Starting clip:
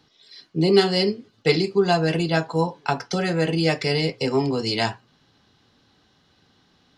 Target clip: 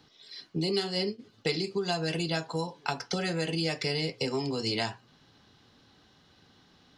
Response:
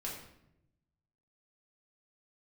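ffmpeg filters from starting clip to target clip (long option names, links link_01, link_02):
-filter_complex "[0:a]asplit=3[link_01][link_02][link_03];[link_01]afade=type=out:start_time=0.71:duration=0.02[link_04];[link_02]agate=range=-33dB:threshold=-19dB:ratio=3:detection=peak,afade=type=in:start_time=0.71:duration=0.02,afade=type=out:start_time=1.18:duration=0.02[link_05];[link_03]afade=type=in:start_time=1.18:duration=0.02[link_06];[link_04][link_05][link_06]amix=inputs=3:normalize=0,acrossover=split=2800|5600[link_07][link_08][link_09];[link_07]acompressor=threshold=-30dB:ratio=4[link_10];[link_08]acompressor=threshold=-36dB:ratio=4[link_11];[link_09]acompressor=threshold=-43dB:ratio=4[link_12];[link_10][link_11][link_12]amix=inputs=3:normalize=0"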